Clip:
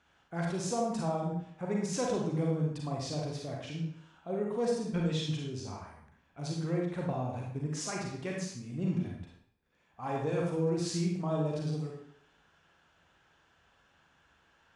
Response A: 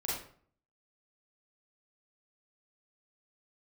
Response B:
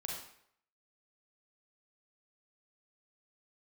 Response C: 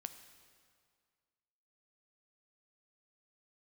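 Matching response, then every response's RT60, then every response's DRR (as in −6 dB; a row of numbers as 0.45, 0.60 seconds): B; 0.50, 0.70, 2.0 seconds; −6.5, −1.5, 9.0 decibels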